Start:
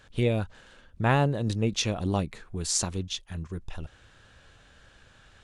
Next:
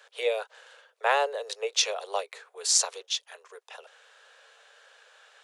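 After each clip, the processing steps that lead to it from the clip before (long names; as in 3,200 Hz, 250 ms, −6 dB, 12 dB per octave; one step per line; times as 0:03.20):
Butterworth high-pass 430 Hz 96 dB per octave
dynamic equaliser 5,100 Hz, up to +4 dB, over −44 dBFS, Q 1.1
level +2 dB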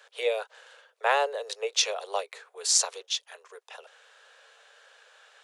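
no processing that can be heard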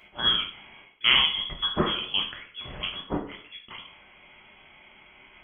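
voice inversion scrambler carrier 3,800 Hz
dense smooth reverb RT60 0.54 s, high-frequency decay 0.75×, DRR 1 dB
level +2 dB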